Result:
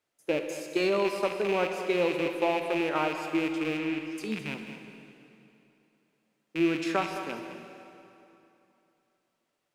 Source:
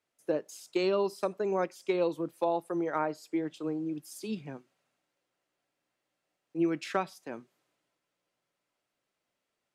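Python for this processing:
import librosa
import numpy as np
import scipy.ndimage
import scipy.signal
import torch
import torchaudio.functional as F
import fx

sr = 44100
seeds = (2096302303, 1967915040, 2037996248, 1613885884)

p1 = fx.rattle_buzz(x, sr, strikes_db=-45.0, level_db=-26.0)
p2 = fx.air_absorb(p1, sr, metres=250.0, at=(3.77, 4.18))
p3 = p2 + fx.echo_single(p2, sr, ms=213, db=-11.5, dry=0)
p4 = fx.rev_plate(p3, sr, seeds[0], rt60_s=2.9, hf_ratio=0.85, predelay_ms=0, drr_db=5.5)
y = F.gain(torch.from_numpy(p4), 1.5).numpy()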